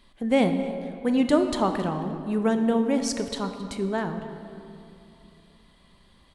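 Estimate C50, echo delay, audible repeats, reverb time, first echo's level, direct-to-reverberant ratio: 7.5 dB, 269 ms, 1, 2.8 s, -18.5 dB, 6.5 dB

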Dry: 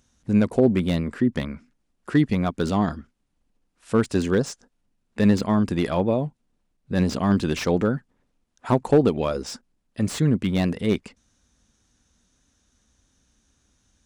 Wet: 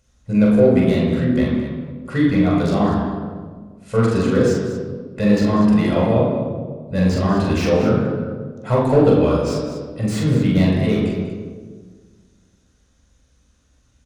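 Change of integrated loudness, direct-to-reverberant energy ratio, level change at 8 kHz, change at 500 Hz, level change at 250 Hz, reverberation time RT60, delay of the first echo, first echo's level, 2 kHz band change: +5.0 dB, -5.0 dB, +0.5 dB, +6.5 dB, +5.5 dB, 1.6 s, 43 ms, -2.5 dB, +4.5 dB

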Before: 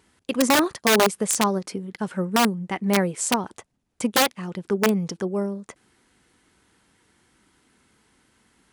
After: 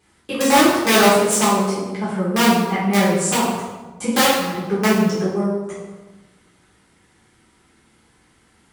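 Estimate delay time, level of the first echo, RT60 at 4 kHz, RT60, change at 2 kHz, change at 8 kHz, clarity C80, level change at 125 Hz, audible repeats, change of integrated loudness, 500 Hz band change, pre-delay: no echo, no echo, 0.85 s, 1.2 s, +5.0 dB, +4.5 dB, 3.5 dB, +6.0 dB, no echo, +5.5 dB, +5.5 dB, 3 ms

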